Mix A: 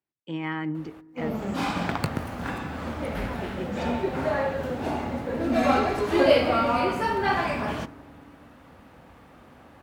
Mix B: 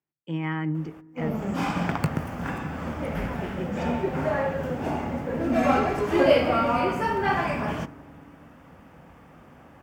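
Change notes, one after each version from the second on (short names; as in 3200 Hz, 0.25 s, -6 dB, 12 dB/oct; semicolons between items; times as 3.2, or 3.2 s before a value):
master: add thirty-one-band EQ 160 Hz +7 dB, 4000 Hz -11 dB, 10000 Hz -5 dB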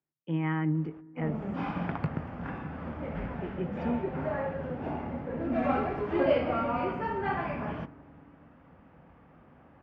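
background -5.5 dB; master: add air absorption 340 m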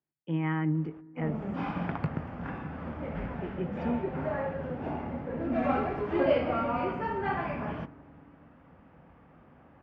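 none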